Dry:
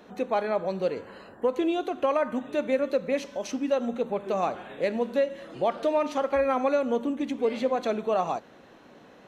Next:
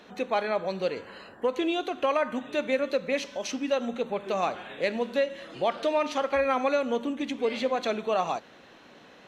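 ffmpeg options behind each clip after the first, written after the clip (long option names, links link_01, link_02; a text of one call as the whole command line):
ffmpeg -i in.wav -af "equalizer=frequency=3400:width_type=o:width=2.6:gain=8.5,volume=-2.5dB" out.wav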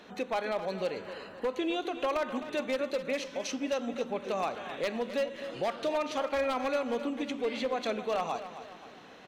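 ffmpeg -i in.wav -filter_complex "[0:a]asplit=2[link_01][link_02];[link_02]acompressor=threshold=-34dB:ratio=6,volume=1dB[link_03];[link_01][link_03]amix=inputs=2:normalize=0,aeval=exprs='0.158*(abs(mod(val(0)/0.158+3,4)-2)-1)':channel_layout=same,aecho=1:1:262|524|786|1048|1310:0.251|0.116|0.0532|0.0244|0.0112,volume=-7dB" out.wav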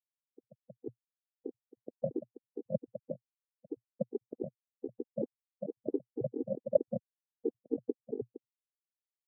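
ffmpeg -i in.wav -af "acrusher=bits=3:mix=0:aa=0.000001,asuperpass=centerf=270:order=20:qfactor=0.54,afftfilt=real='re*gt(sin(2*PI*4.5*pts/sr)*(1-2*mod(floor(b*sr/1024/250),2)),0)':imag='im*gt(sin(2*PI*4.5*pts/sr)*(1-2*mod(floor(b*sr/1024/250),2)),0)':win_size=1024:overlap=0.75,volume=13dB" out.wav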